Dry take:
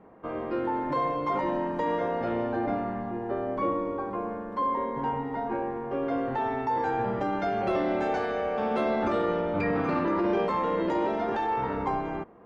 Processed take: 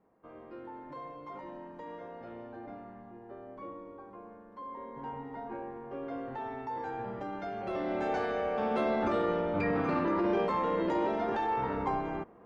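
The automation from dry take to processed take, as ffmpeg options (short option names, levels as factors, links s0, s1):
-af "volume=0.708,afade=t=in:st=4.64:d=0.58:silence=0.473151,afade=t=in:st=7.64:d=0.57:silence=0.446684"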